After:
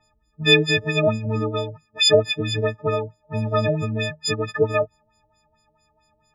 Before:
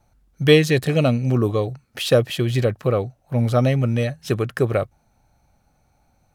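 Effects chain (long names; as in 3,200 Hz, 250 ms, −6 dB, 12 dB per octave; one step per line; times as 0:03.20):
every partial snapped to a pitch grid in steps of 6 semitones
auto-filter low-pass sine 4.5 Hz 490–6,300 Hz
level −5.5 dB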